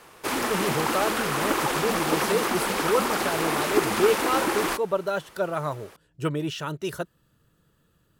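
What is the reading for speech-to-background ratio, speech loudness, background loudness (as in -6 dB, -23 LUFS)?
-3.5 dB, -29.0 LUFS, -25.5 LUFS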